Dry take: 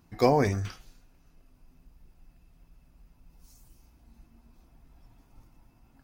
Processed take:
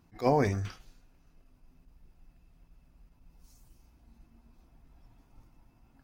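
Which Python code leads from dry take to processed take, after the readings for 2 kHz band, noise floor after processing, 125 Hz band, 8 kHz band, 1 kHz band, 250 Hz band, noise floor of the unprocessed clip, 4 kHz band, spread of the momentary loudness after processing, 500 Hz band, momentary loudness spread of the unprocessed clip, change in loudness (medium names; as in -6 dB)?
-3.0 dB, -65 dBFS, -2.5 dB, -5.0 dB, -3.0 dB, -3.0 dB, -63 dBFS, -7.0 dB, 12 LU, -3.5 dB, 13 LU, -3.0 dB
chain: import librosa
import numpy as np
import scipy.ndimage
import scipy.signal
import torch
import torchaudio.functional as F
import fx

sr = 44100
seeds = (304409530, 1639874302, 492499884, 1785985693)

y = fx.high_shelf(x, sr, hz=6400.0, db=-4.5)
y = fx.attack_slew(y, sr, db_per_s=300.0)
y = F.gain(torch.from_numpy(y), -2.0).numpy()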